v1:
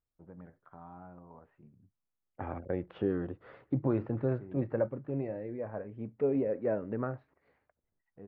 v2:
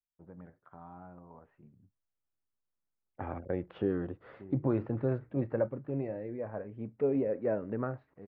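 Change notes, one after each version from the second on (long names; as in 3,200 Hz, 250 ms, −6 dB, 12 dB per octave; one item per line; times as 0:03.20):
second voice: entry +0.80 s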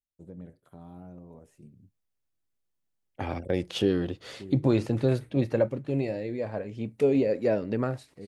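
first voice: add flat-topped bell 1,900 Hz −10.5 dB 3 octaves
master: remove transistor ladder low-pass 1,800 Hz, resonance 30%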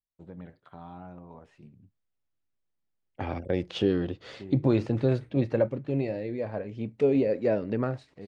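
first voice: add flat-topped bell 1,900 Hz +10.5 dB 3 octaves
master: add high-frequency loss of the air 110 metres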